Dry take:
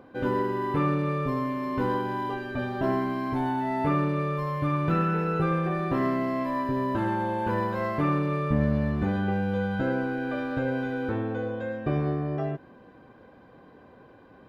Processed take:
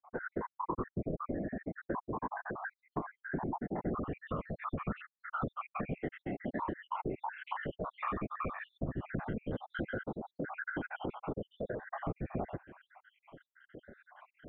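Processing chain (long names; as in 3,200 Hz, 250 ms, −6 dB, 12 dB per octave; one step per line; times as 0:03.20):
time-frequency cells dropped at random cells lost 74%
elliptic low-pass filter 1,800 Hz, stop band 40 dB, from 0:04.05 3,200 Hz
downward compressor 3 to 1, threshold −41 dBFS, peak gain reduction 13.5 dB
random phases in short frames
level +4 dB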